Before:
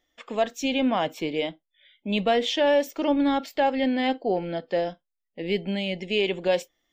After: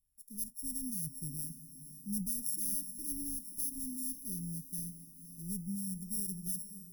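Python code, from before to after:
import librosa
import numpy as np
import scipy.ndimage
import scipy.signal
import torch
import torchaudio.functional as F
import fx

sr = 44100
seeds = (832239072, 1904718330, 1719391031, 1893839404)

y = np.r_[np.sort(x[:len(x) // 8 * 8].reshape(-1, 8), axis=1).ravel(), x[len(x) // 8 * 8:]]
y = scipy.signal.sosfilt(scipy.signal.ellip(3, 1.0, 60, [150.0, 9300.0], 'bandstop', fs=sr, output='sos'), y)
y = fx.echo_diffused(y, sr, ms=542, feedback_pct=52, wet_db=-12.5)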